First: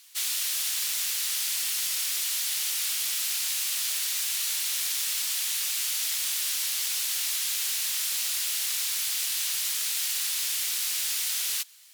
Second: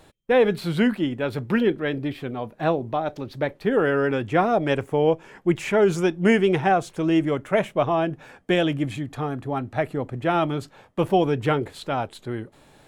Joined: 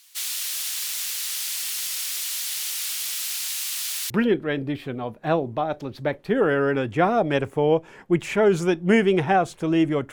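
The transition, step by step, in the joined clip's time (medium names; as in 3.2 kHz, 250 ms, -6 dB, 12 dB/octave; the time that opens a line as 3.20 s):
first
3.48–4.10 s: steep high-pass 600 Hz 48 dB/octave
4.10 s: go over to second from 1.46 s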